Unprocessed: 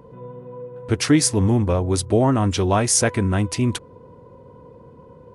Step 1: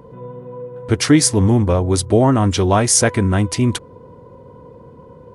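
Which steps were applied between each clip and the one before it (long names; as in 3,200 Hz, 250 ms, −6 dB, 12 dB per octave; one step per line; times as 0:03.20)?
notch filter 2,600 Hz, Q 18
level +4 dB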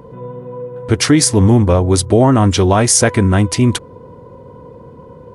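boost into a limiter +5 dB
level −1 dB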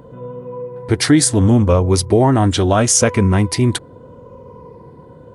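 rippled gain that drifts along the octave scale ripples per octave 0.83, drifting −0.76 Hz, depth 6 dB
level −2.5 dB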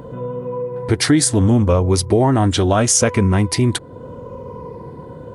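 downward compressor 1.5 to 1, threshold −31 dBFS, peak gain reduction 8.5 dB
level +6 dB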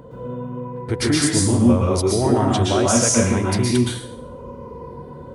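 dense smooth reverb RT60 0.66 s, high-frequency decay 1×, pre-delay 105 ms, DRR −3.5 dB
level −7 dB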